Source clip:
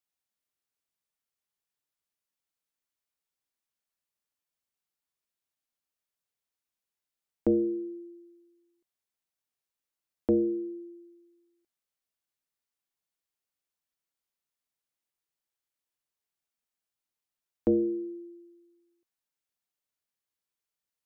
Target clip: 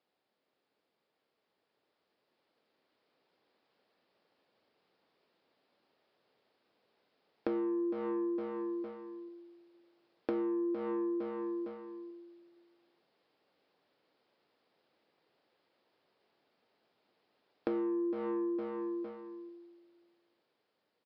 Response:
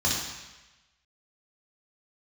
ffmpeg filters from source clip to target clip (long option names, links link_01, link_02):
-filter_complex "[0:a]aresample=11025,asoftclip=type=tanh:threshold=-34.5dB,aresample=44100,equalizer=frequency=230:width=0.46:gain=2.5,aecho=1:1:458|916|1374:0.422|0.114|0.0307,dynaudnorm=framelen=160:gausssize=31:maxgain=6.5dB,asplit=2[link_01][link_02];[1:a]atrim=start_sample=2205[link_03];[link_02][link_03]afir=irnorm=-1:irlink=0,volume=-34dB[link_04];[link_01][link_04]amix=inputs=2:normalize=0,alimiter=level_in=10.5dB:limit=-24dB:level=0:latency=1:release=298,volume=-10.5dB,highpass=120,equalizer=frequency=470:width=0.56:gain=13,acompressor=threshold=-40dB:ratio=5,volume=6.5dB"